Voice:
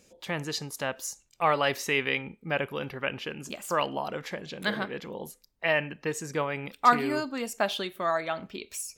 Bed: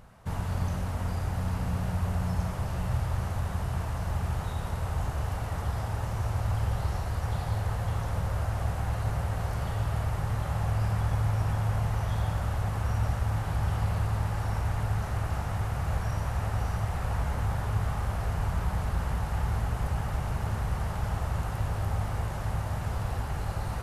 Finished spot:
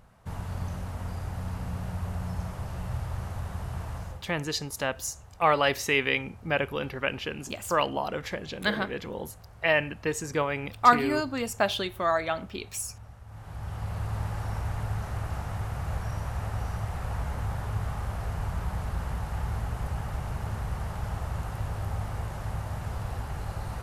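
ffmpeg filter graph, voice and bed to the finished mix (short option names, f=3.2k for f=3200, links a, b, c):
-filter_complex "[0:a]adelay=4000,volume=2dB[a];[1:a]volume=13dB,afade=t=out:st=3.97:d=0.27:silence=0.16788,afade=t=in:st=13.26:d=0.95:silence=0.141254[b];[a][b]amix=inputs=2:normalize=0"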